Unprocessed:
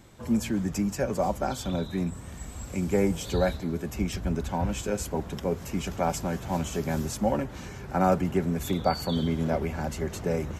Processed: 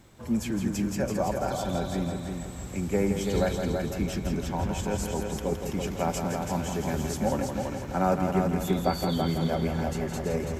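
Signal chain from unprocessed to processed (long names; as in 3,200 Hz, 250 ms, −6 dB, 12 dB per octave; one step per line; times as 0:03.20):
bit-depth reduction 12 bits, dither none
echo machine with several playback heads 166 ms, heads first and second, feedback 48%, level −7 dB
level −2 dB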